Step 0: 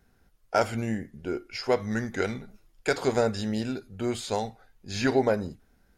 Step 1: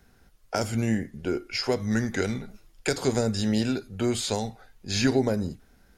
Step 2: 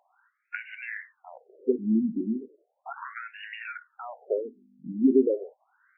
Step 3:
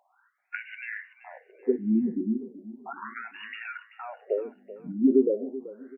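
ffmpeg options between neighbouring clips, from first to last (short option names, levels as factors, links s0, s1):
-filter_complex "[0:a]equalizer=f=5300:t=o:w=2.6:g=3,acrossover=split=330|5200[s0][s1][s2];[s1]acompressor=threshold=0.02:ratio=5[s3];[s0][s3][s2]amix=inputs=3:normalize=0,volume=1.78"
-af "aeval=exprs='val(0)+0.00355*(sin(2*PI*50*n/s)+sin(2*PI*2*50*n/s)/2+sin(2*PI*3*50*n/s)/3+sin(2*PI*4*50*n/s)/4+sin(2*PI*5*50*n/s)/5)':c=same,afftfilt=real='re*between(b*sr/1024,240*pow(2100/240,0.5+0.5*sin(2*PI*0.36*pts/sr))/1.41,240*pow(2100/240,0.5+0.5*sin(2*PI*0.36*pts/sr))*1.41)':imag='im*between(b*sr/1024,240*pow(2100/240,0.5+0.5*sin(2*PI*0.36*pts/sr))/1.41,240*pow(2100/240,0.5+0.5*sin(2*PI*0.36*pts/sr))*1.41)':win_size=1024:overlap=0.75,volume=1.58"
-af "aecho=1:1:383|766|1149:0.158|0.0555|0.0194"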